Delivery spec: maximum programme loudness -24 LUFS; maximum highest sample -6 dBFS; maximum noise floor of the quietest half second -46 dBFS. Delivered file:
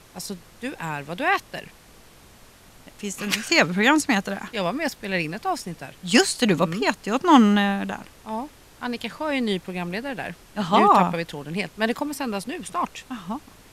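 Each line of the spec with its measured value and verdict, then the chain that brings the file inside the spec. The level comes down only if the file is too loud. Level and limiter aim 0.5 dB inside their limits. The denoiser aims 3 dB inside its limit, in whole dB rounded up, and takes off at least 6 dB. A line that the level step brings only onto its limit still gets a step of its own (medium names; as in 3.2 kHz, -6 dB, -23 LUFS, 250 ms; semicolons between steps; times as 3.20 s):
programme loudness -23.0 LUFS: fail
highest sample -3.0 dBFS: fail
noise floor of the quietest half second -50 dBFS: pass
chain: trim -1.5 dB; peak limiter -6.5 dBFS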